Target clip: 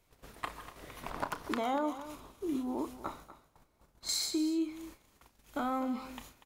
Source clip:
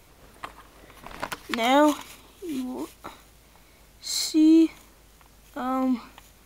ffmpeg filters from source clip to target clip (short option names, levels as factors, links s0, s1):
-filter_complex "[0:a]agate=range=0.141:threshold=0.00282:ratio=16:detection=peak,asettb=1/sr,asplit=3[s0][s1][s2];[s0]atrim=end=1.104[s3];[s1]atrim=start=1.1:end=4.09,asetpts=PTS-STARTPTS,afade=t=in:d=0.004:c=qsin,afade=t=out:st=2.986:d=0.004:c=qsin,highshelf=f=1600:t=q:w=1.5:g=-6.5[s4];[s2]atrim=start=4.086[s5];[s3][s4]acrossfade=d=0.004:c1=hsin:c2=qsin[s6];[s6][s5]acrossfade=d=0.004:c1=qsin:c2=hsin,acompressor=threshold=0.0282:ratio=6,asplit=2[s7][s8];[s8]adelay=33,volume=0.251[s9];[s7][s9]amix=inputs=2:normalize=0,aecho=1:1:242:0.2"